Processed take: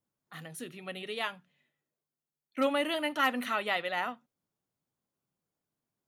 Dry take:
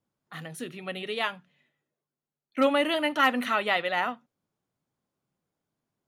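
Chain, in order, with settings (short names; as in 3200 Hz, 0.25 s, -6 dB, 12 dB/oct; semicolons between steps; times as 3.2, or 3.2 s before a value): high shelf 7700 Hz +7 dB; gain -5.5 dB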